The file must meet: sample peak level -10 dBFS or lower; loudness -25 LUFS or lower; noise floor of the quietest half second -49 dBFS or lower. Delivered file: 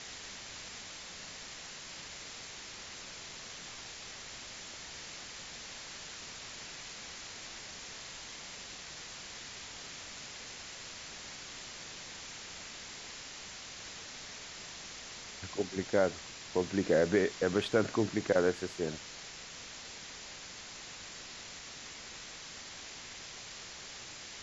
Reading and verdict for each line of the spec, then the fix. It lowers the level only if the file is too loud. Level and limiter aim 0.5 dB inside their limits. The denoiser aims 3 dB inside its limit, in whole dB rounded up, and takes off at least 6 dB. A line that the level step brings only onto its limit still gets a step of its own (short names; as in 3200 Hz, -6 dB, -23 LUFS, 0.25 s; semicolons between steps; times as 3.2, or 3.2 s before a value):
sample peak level -14.5 dBFS: OK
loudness -38.5 LUFS: OK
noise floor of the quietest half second -47 dBFS: fail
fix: denoiser 6 dB, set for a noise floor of -47 dBFS